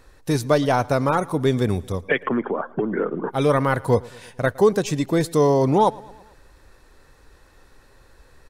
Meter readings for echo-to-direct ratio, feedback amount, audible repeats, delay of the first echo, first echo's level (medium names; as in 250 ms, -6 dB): -21.5 dB, 58%, 3, 112 ms, -23.0 dB